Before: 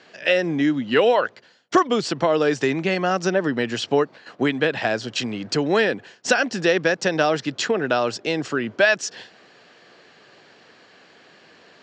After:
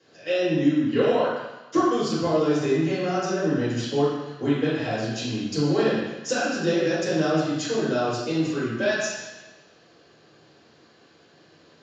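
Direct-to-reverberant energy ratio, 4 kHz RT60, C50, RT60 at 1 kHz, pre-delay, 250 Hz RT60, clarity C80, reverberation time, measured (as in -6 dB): -10.5 dB, 1.1 s, -1.5 dB, 1.2 s, 3 ms, 1.0 s, 2.0 dB, 1.0 s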